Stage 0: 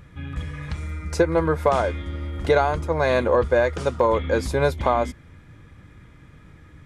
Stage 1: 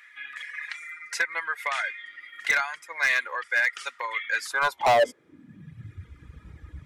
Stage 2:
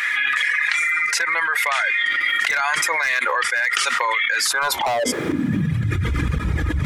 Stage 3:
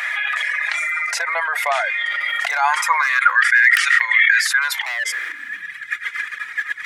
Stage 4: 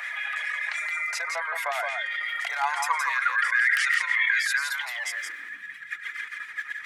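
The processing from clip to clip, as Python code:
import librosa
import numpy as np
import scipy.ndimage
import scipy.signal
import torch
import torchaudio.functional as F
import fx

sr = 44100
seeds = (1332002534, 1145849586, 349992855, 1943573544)

y1 = fx.filter_sweep_highpass(x, sr, from_hz=1900.0, to_hz=61.0, start_s=4.38, end_s=6.18, q=4.6)
y1 = fx.dereverb_blind(y1, sr, rt60_s=1.4)
y1 = np.clip(10.0 ** (16.5 / 20.0) * y1, -1.0, 1.0) / 10.0 ** (16.5 / 20.0)
y2 = fx.tremolo_shape(y1, sr, shape='saw_up', hz=0.94, depth_pct=70)
y2 = fx.env_flatten(y2, sr, amount_pct=100)
y2 = F.gain(torch.from_numpy(y2), -1.0).numpy()
y3 = (np.mod(10.0 ** (2.5 / 20.0) * y2 + 1.0, 2.0) - 1.0) / 10.0 ** (2.5 / 20.0)
y3 = fx.filter_sweep_highpass(y3, sr, from_hz=680.0, to_hz=1800.0, start_s=2.41, end_s=3.58, q=5.1)
y3 = F.gain(torch.from_numpy(y3), -3.0).numpy()
y4 = fx.harmonic_tremolo(y3, sr, hz=7.2, depth_pct=50, crossover_hz=1800.0)
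y4 = y4 + 10.0 ** (-5.0 / 20.0) * np.pad(y4, (int(169 * sr / 1000.0), 0))[:len(y4)]
y4 = F.gain(torch.from_numpy(y4), -7.5).numpy()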